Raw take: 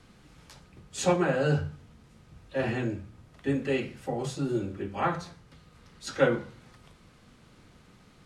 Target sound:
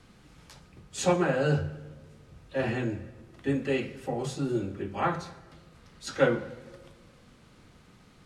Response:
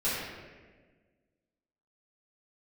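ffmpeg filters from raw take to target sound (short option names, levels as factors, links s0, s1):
-filter_complex "[0:a]asplit=2[s0][s1];[1:a]atrim=start_sample=2205,adelay=121[s2];[s1][s2]afir=irnorm=-1:irlink=0,volume=0.0376[s3];[s0][s3]amix=inputs=2:normalize=0"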